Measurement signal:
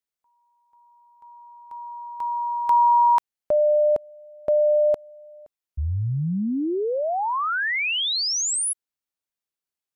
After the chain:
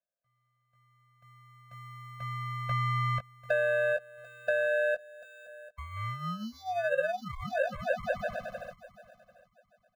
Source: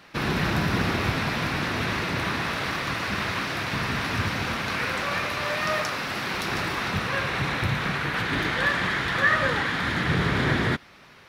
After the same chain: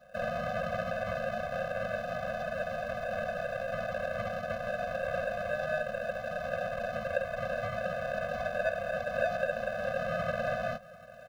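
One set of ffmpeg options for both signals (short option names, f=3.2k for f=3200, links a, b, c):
-filter_complex "[0:a]lowpass=7.3k,asplit=2[a][b];[b]adelay=18,volume=-6dB[c];[a][c]amix=inputs=2:normalize=0,acrossover=split=120|820|5500[d][e][f][g];[g]asoftclip=type=tanh:threshold=-38.5dB[h];[d][e][f][h]amix=inputs=4:normalize=0,acrusher=samples=41:mix=1:aa=0.000001,acrossover=split=410 2200:gain=0.1 1 0.178[i][j][k];[i][j][k]amix=inputs=3:normalize=0,acompressor=threshold=-27dB:ratio=5:release=635:knee=6:detection=rms,aecho=1:1:742|1484:0.1|0.024,acrossover=split=5200[l][m];[m]acompressor=threshold=-60dB:ratio=4:attack=1:release=60[n];[l][n]amix=inputs=2:normalize=0,afftfilt=real='re*eq(mod(floor(b*sr/1024/250),2),0)':imag='im*eq(mod(floor(b*sr/1024/250),2),0)':win_size=1024:overlap=0.75,volume=4dB"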